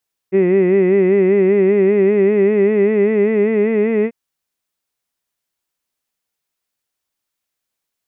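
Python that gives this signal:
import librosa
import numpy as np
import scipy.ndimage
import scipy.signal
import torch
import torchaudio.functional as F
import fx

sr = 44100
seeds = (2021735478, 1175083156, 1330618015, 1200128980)

y = fx.vowel(sr, seeds[0], length_s=3.79, word='hid', hz=185.0, glide_st=3.0, vibrato_hz=5.1, vibrato_st=0.9)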